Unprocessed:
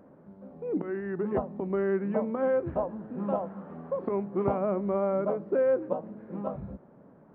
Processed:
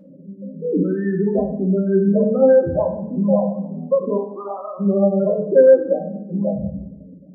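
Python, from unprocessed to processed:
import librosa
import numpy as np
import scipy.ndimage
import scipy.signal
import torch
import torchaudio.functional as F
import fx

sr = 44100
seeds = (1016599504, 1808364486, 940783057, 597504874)

y = fx.highpass(x, sr, hz=fx.line((4.16, 680.0), (4.79, 1500.0)), slope=12, at=(4.16, 4.79), fade=0.02)
y = fx.spec_topn(y, sr, count=8)
y = fx.rev_fdn(y, sr, rt60_s=0.75, lf_ratio=1.25, hf_ratio=0.75, size_ms=33.0, drr_db=0.5)
y = y * 10.0 ** (8.5 / 20.0)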